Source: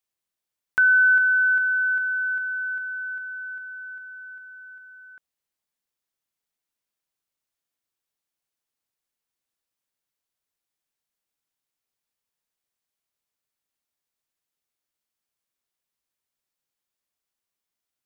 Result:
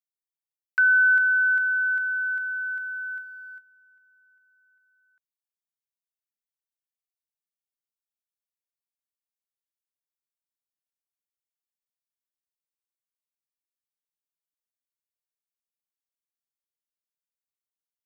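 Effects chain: gate -34 dBFS, range -20 dB; tilt EQ +3.5 dB/octave; trim -3.5 dB

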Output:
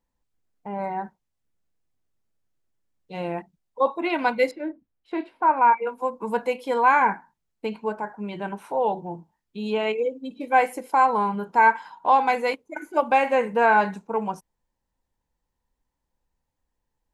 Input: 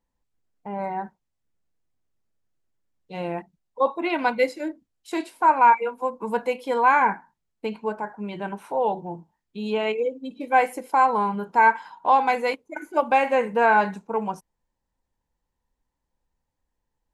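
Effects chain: 4.51–5.87 s: distance through air 410 m

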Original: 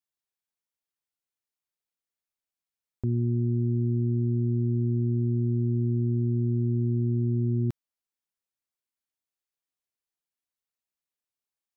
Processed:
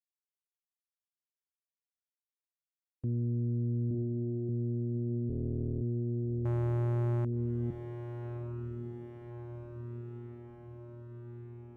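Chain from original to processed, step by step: 5.28–5.82 s: cycle switcher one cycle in 3, muted; spectral gate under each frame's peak -20 dB strong; gate with hold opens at -22 dBFS; 3.87–4.49 s: flutter echo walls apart 6.3 m, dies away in 0.53 s; 6.45–7.25 s: waveshaping leveller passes 3; on a send: echo that smears into a reverb 1183 ms, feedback 65%, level -8.5 dB; on the sum: loudspeaker Doppler distortion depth 0.16 ms; trim -6 dB

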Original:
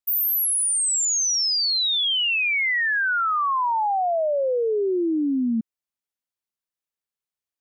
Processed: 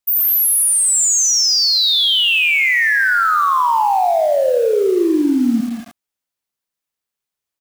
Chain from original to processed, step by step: 0.51–2.69 s: high-pass 740 Hz 24 dB/octave; delay 193 ms -9 dB; bit-crushed delay 84 ms, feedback 55%, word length 6-bit, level -8.5 dB; trim +6.5 dB

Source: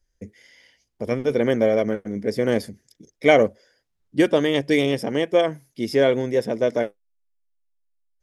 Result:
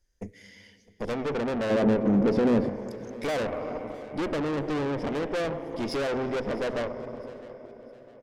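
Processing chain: low-pass that closes with the level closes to 1.1 kHz, closed at -16 dBFS; plate-style reverb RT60 4.9 s, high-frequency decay 0.95×, pre-delay 0 ms, DRR 13.5 dB; in parallel at +2 dB: peak limiter -12.5 dBFS, peak gain reduction 7 dB; on the sum: valve stage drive 24 dB, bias 0.75; 1.70–2.69 s: peaking EQ 220 Hz +10.5 dB 2.3 oct; on a send: feedback delay 658 ms, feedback 38%, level -20.5 dB; on the sum: trim -2.5 dB

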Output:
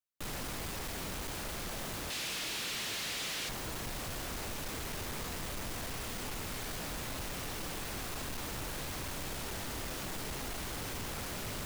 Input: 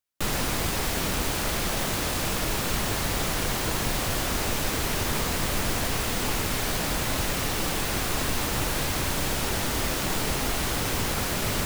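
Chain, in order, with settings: 2.10–3.49 s: frequency weighting D; saturation -26 dBFS, distortion -11 dB; trim -9 dB

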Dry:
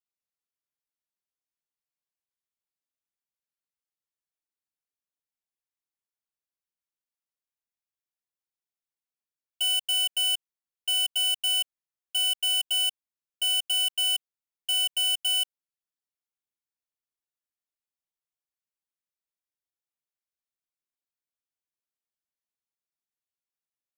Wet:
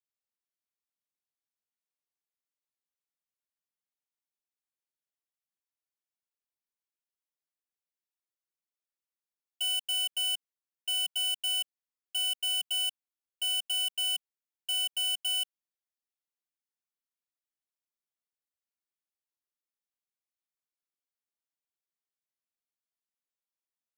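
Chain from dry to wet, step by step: steep high-pass 180 Hz 48 dB/octave; trim -5 dB

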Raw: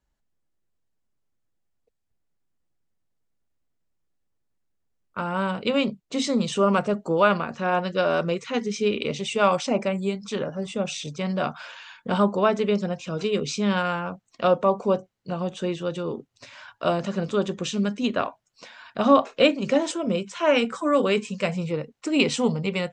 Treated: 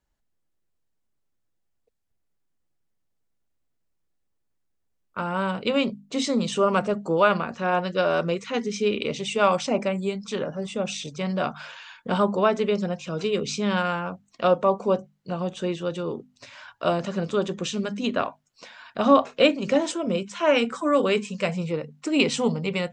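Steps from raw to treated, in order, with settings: hum notches 50/100/150/200/250 Hz

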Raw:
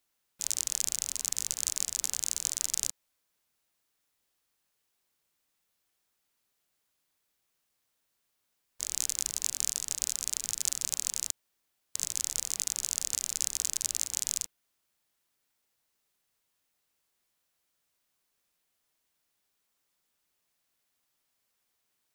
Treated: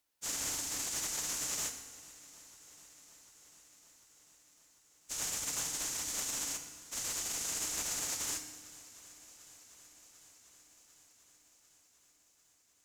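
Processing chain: one-sided clip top -19.5 dBFS, bottom -7 dBFS; FDN reverb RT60 2 s, low-frequency decay 1.25×, high-frequency decay 0.85×, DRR 5 dB; plain phase-vocoder stretch 0.58×; on a send: shuffle delay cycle 746 ms, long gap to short 1.5:1, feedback 68%, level -20.5 dB

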